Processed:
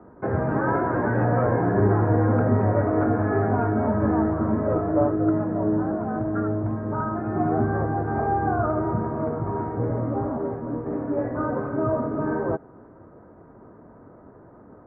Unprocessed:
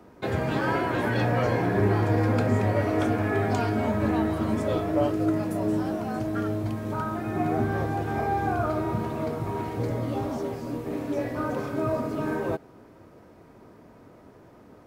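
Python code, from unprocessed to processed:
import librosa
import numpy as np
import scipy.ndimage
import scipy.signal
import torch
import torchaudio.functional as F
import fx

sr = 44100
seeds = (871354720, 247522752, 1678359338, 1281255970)

y = scipy.signal.sosfilt(scipy.signal.butter(6, 1600.0, 'lowpass', fs=sr, output='sos'), x)
y = F.gain(torch.from_numpy(y), 3.0).numpy()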